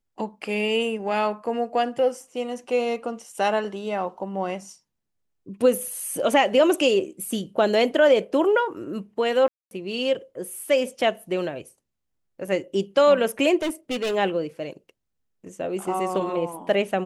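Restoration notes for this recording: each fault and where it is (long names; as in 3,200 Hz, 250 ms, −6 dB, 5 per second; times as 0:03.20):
0:09.48–0:09.71: drop-out 231 ms
0:13.62–0:14.15: clipping −22.5 dBFS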